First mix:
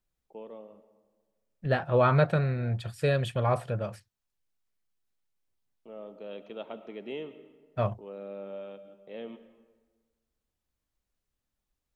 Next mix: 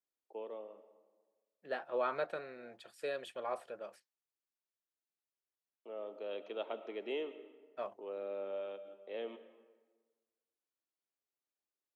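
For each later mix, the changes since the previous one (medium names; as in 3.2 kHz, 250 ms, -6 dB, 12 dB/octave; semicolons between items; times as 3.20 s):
second voice -11.0 dB; master: add high-pass 310 Hz 24 dB/octave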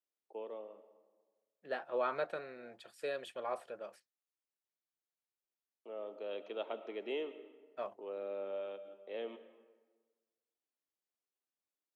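no change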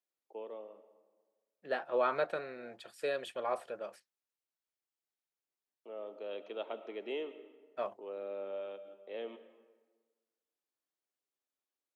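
second voice +4.0 dB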